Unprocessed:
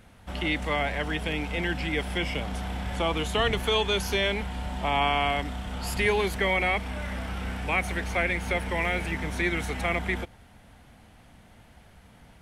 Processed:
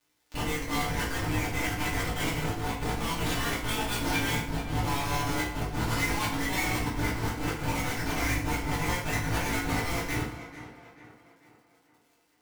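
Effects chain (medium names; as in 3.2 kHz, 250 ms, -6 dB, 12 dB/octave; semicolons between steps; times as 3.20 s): inverse Chebyshev high-pass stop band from 200 Hz, stop band 70 dB; in parallel at -3 dB: compression 5:1, threshold -37 dBFS, peak gain reduction 13.5 dB; on the sum: tremolo saw up 4.8 Hz, depth 90%; Chebyshev shaper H 2 -25 dB, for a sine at -13.5 dBFS; Schmitt trigger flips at -36 dBFS; bit crusher 6-bit; crackle 83 per s -53 dBFS; chorus 0.29 Hz, delay 17 ms, depth 2 ms; on a send: tape echo 440 ms, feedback 50%, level -11 dB, low-pass 3.4 kHz; on the sum: FDN reverb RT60 0.58 s, low-frequency decay 1.25×, high-frequency decay 0.85×, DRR -6 dB; trim +1 dB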